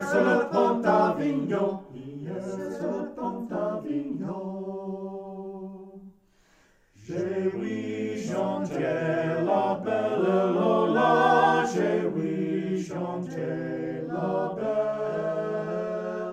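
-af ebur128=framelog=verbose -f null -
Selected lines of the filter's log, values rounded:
Integrated loudness:
  I:         -26.8 LUFS
  Threshold: -37.4 LUFS
Loudness range:
  LRA:        11.2 LU
  Threshold: -47.7 LUFS
  LRA low:   -34.6 LUFS
  LRA high:  -23.5 LUFS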